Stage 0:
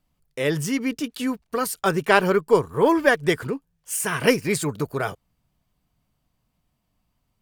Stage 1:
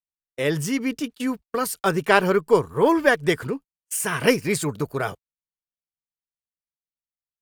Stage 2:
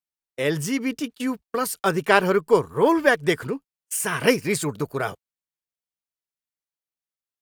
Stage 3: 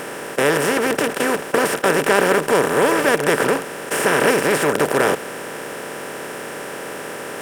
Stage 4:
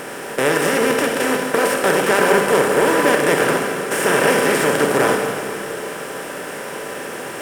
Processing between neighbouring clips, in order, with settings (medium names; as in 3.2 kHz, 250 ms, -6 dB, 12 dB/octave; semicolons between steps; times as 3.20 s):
gate -33 dBFS, range -40 dB
bass shelf 85 Hz -6 dB
spectral levelling over time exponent 0.2; trim -5 dB
Schroeder reverb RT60 2.3 s, combs from 31 ms, DRR 1.5 dB; trim -1 dB